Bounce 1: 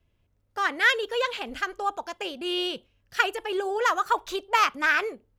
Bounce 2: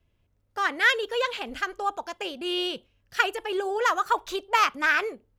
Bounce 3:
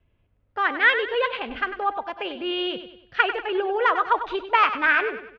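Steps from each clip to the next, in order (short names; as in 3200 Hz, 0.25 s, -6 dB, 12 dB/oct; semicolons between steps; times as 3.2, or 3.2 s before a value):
nothing audible
LPF 3100 Hz 24 dB/oct; on a send: feedback echo 97 ms, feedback 42%, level -11 dB; on the sum: gain +3 dB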